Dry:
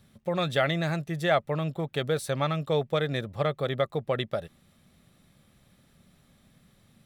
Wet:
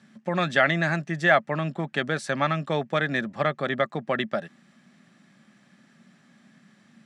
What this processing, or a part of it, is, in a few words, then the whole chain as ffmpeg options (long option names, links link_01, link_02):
television speaker: -af "highpass=frequency=170:width=0.5412,highpass=frequency=170:width=1.3066,equalizer=frequency=220:width_type=q:width=4:gain=6,equalizer=frequency=470:width_type=q:width=4:gain=-10,equalizer=frequency=1700:width_type=q:width=4:gain=8,equalizer=frequency=3700:width_type=q:width=4:gain=-6,lowpass=frequency=7500:width=0.5412,lowpass=frequency=7500:width=1.3066,volume=4.5dB"